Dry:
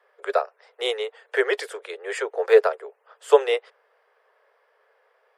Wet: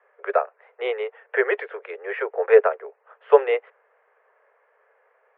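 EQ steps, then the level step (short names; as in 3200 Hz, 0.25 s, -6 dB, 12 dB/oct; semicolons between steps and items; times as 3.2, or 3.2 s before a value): HPF 350 Hz 24 dB/oct; steep low-pass 2500 Hz 36 dB/oct; +1.5 dB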